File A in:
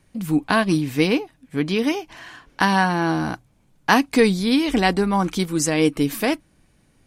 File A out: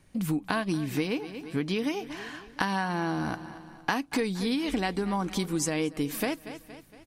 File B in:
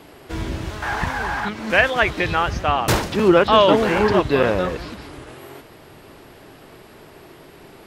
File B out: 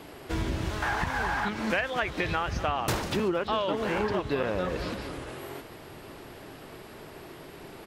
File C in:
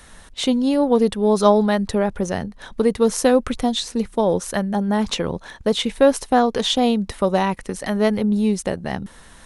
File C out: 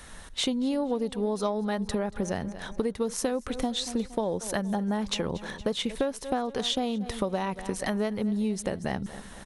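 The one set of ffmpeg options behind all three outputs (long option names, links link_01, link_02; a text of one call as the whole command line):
ffmpeg -i in.wav -af "aecho=1:1:232|464|696|928:0.112|0.055|0.0269|0.0132,aeval=exprs='0.891*(cos(1*acos(clip(val(0)/0.891,-1,1)))-cos(1*PI/2))+0.0355*(cos(3*acos(clip(val(0)/0.891,-1,1)))-cos(3*PI/2))':channel_layout=same,acompressor=threshold=-25dB:ratio=8" out.wav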